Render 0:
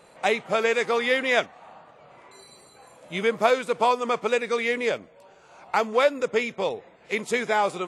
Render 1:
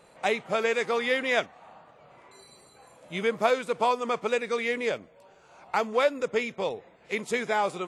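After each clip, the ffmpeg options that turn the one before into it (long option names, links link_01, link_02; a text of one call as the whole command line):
ffmpeg -i in.wav -af "lowshelf=frequency=150:gain=3.5,volume=-3.5dB" out.wav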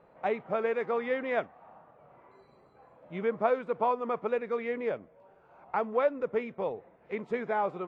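ffmpeg -i in.wav -af "lowpass=1400,volume=-2.5dB" out.wav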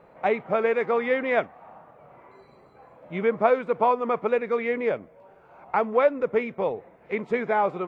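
ffmpeg -i in.wav -af "equalizer=frequency=2200:width=5.2:gain=3.5,volume=6.5dB" out.wav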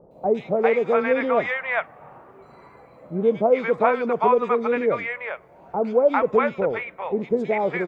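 ffmpeg -i in.wav -filter_complex "[0:a]acrossover=split=740|3400[link_01][link_02][link_03];[link_03]adelay=110[link_04];[link_02]adelay=400[link_05];[link_01][link_05][link_04]amix=inputs=3:normalize=0,volume=5dB" out.wav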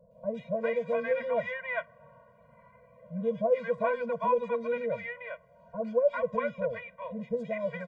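ffmpeg -i in.wav -af "afftfilt=real='re*eq(mod(floor(b*sr/1024/230),2),0)':imag='im*eq(mod(floor(b*sr/1024/230),2),0)':win_size=1024:overlap=0.75,volume=-7dB" out.wav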